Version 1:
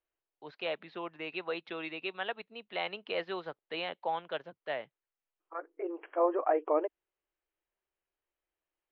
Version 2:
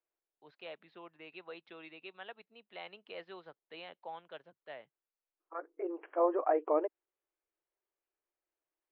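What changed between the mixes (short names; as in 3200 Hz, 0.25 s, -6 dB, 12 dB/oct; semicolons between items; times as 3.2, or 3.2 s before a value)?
first voice -11.5 dB; second voice: add air absorption 390 m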